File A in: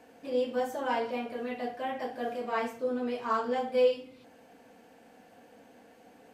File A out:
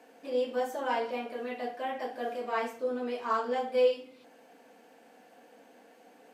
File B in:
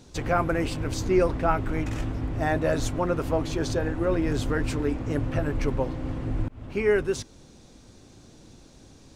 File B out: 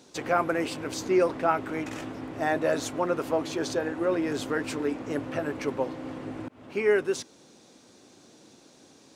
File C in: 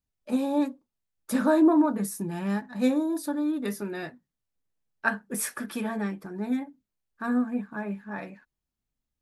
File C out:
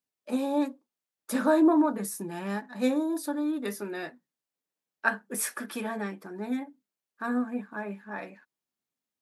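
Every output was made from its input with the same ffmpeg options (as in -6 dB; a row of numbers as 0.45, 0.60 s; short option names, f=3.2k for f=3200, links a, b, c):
-af "highpass=260"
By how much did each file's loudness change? -0.5, -1.5, -2.0 LU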